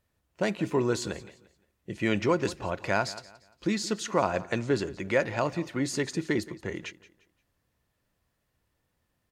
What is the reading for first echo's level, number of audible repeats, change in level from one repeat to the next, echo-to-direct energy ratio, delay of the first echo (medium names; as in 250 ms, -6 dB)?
-18.0 dB, 2, -9.5 dB, -17.5 dB, 174 ms